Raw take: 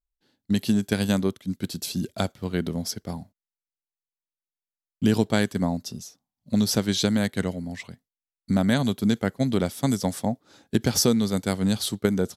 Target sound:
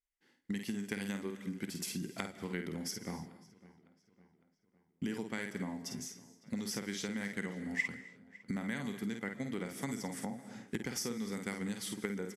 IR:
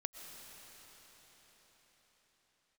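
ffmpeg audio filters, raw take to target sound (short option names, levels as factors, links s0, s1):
-filter_complex "[0:a]lowpass=12000,lowshelf=f=110:g=-11.5,asplit=2[s0][s1];[s1]adelay=50,volume=0.473[s2];[s0][s2]amix=inputs=2:normalize=0,asplit=2[s3][s4];[1:a]atrim=start_sample=2205,afade=t=out:st=0.35:d=0.01,atrim=end_sample=15876[s5];[s4][s5]afir=irnorm=-1:irlink=0,volume=0.708[s6];[s3][s6]amix=inputs=2:normalize=0,acompressor=threshold=0.0355:ratio=6,equalizer=f=100:t=o:w=0.33:g=-9,equalizer=f=630:t=o:w=0.33:g=-10,equalizer=f=2000:t=o:w=0.33:g=12,equalizer=f=4000:t=o:w=0.33:g=-11,asplit=2[s7][s8];[s8]adelay=556,lowpass=f=4000:p=1,volume=0.0891,asplit=2[s9][s10];[s10]adelay=556,lowpass=f=4000:p=1,volume=0.52,asplit=2[s11][s12];[s12]adelay=556,lowpass=f=4000:p=1,volume=0.52,asplit=2[s13][s14];[s14]adelay=556,lowpass=f=4000:p=1,volume=0.52[s15];[s7][s9][s11][s13][s15]amix=inputs=5:normalize=0,volume=0.501"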